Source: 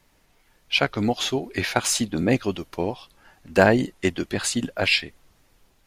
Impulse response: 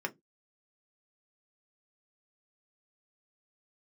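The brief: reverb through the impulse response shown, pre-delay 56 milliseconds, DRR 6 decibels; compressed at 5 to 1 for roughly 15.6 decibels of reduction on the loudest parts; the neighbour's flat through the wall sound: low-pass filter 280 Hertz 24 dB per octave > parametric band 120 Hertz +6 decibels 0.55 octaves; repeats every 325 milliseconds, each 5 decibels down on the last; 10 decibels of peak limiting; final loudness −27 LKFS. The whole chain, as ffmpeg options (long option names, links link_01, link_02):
-filter_complex "[0:a]acompressor=threshold=-29dB:ratio=5,alimiter=limit=-23dB:level=0:latency=1,aecho=1:1:325|650|975|1300|1625|1950|2275:0.562|0.315|0.176|0.0988|0.0553|0.031|0.0173,asplit=2[link_01][link_02];[1:a]atrim=start_sample=2205,adelay=56[link_03];[link_02][link_03]afir=irnorm=-1:irlink=0,volume=-10dB[link_04];[link_01][link_04]amix=inputs=2:normalize=0,lowpass=frequency=280:width=0.5412,lowpass=frequency=280:width=1.3066,equalizer=frequency=120:width_type=o:width=0.55:gain=6,volume=10.5dB"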